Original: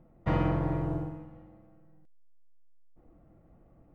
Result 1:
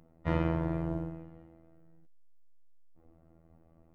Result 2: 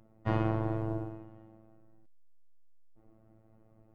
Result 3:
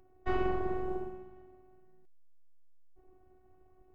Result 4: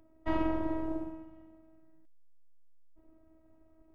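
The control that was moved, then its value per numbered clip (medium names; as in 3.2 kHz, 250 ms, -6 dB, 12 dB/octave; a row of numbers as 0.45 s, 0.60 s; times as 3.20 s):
robot voice, frequency: 82 Hz, 110 Hz, 370 Hz, 320 Hz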